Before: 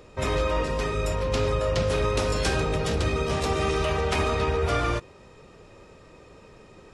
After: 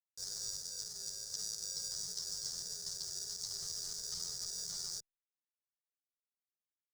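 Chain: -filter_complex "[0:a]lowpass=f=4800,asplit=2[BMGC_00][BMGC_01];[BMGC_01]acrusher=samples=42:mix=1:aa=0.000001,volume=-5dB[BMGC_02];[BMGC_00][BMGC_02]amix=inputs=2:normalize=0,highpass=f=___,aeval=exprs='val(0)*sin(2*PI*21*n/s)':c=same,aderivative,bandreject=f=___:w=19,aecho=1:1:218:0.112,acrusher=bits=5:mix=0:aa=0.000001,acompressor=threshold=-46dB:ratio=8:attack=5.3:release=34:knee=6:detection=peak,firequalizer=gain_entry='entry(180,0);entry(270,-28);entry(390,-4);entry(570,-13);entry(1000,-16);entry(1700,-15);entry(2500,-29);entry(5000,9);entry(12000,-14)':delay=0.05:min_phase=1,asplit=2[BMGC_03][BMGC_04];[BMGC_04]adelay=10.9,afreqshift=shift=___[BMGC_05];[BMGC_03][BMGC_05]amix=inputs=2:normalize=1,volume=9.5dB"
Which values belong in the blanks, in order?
540, 2600, -1.6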